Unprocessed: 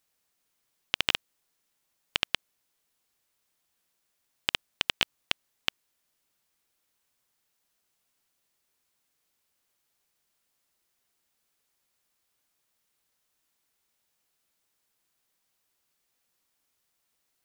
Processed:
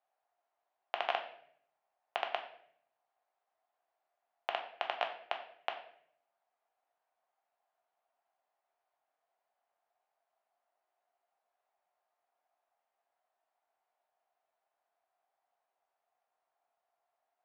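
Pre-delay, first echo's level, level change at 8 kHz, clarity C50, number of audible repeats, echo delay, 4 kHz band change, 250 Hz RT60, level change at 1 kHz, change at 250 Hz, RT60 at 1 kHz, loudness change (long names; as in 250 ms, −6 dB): 7 ms, no echo audible, below −25 dB, 9.5 dB, no echo audible, no echo audible, −15.0 dB, 0.90 s, +5.0 dB, −15.5 dB, 0.55 s, −8.5 dB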